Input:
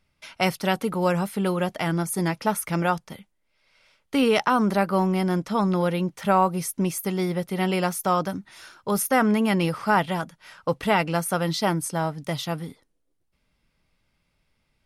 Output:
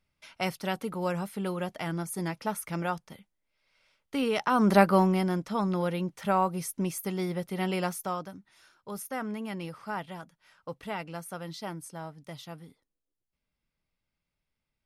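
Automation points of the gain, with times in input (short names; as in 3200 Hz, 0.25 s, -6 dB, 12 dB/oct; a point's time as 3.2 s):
4.4 s -8 dB
4.78 s +3 dB
5.38 s -6 dB
7.9 s -6 dB
8.3 s -14.5 dB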